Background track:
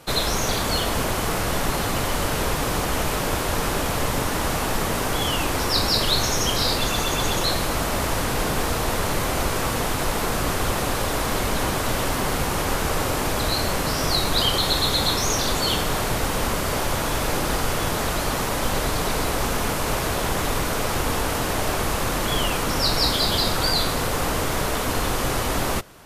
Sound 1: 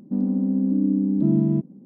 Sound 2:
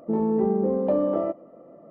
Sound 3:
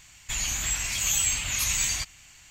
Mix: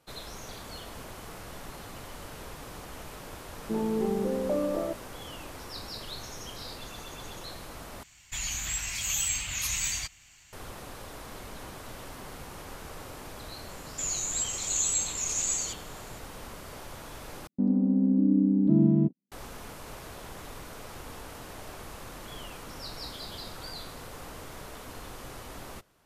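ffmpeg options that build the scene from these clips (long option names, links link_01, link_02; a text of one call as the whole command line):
ffmpeg -i bed.wav -i cue0.wav -i cue1.wav -i cue2.wav -filter_complex "[3:a]asplit=2[link_01][link_02];[0:a]volume=-19.5dB[link_03];[link_02]lowpass=frequency=7200:width_type=q:width=6.6[link_04];[1:a]agate=range=-41dB:threshold=-34dB:ratio=16:release=100:detection=peak[link_05];[link_03]asplit=3[link_06][link_07][link_08];[link_06]atrim=end=8.034[link_09];[link_01]atrim=end=2.5,asetpts=PTS-STARTPTS,volume=-4.5dB[link_10];[link_07]atrim=start=10.526:end=17.474[link_11];[link_05]atrim=end=1.85,asetpts=PTS-STARTPTS,volume=-2dB[link_12];[link_08]atrim=start=19.316[link_13];[2:a]atrim=end=1.9,asetpts=PTS-STARTPTS,volume=-6dB,afade=type=in:duration=0.004:curve=hsin,afade=type=out:start_time=1.896:duration=0.004:curve=hsin,adelay=159201S[link_14];[link_04]atrim=end=2.5,asetpts=PTS-STARTPTS,volume=-15dB,afade=type=in:duration=0.004:curve=hsin,afade=type=out:start_time=2.496:duration=0.004:curve=hsin,adelay=13690[link_15];[link_09][link_10]acrossfade=duration=0.004:curve1=hsin:curve2=hsin[link_16];[link_16][link_11]acrossfade=duration=0.004:curve1=hsin:curve2=hsin[link_17];[link_17][link_12]acrossfade=duration=0.004:curve1=hsin:curve2=hsin[link_18];[link_18][link_13]acrossfade=duration=0.004:curve1=hsin:curve2=hsin[link_19];[link_19][link_14][link_15]amix=inputs=3:normalize=0" out.wav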